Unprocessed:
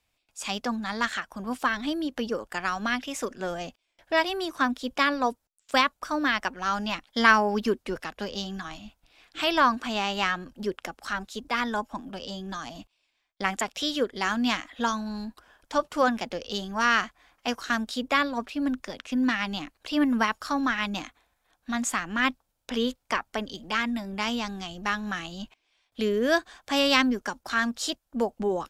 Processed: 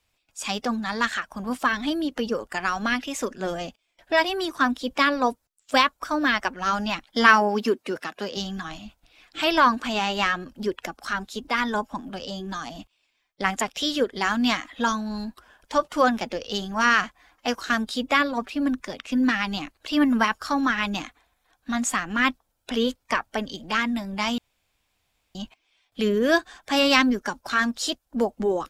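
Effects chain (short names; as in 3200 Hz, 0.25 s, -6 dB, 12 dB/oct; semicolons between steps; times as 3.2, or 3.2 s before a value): bin magnitudes rounded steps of 15 dB; 7.28–8.37 HPF 190 Hz 12 dB/oct; 24.38–25.35 room tone; gain +3.5 dB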